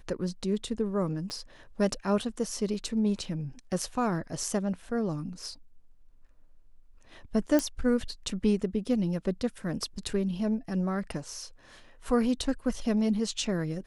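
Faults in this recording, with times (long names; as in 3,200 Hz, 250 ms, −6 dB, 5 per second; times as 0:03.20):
0:01.30: click −24 dBFS
0:07.59: click −13 dBFS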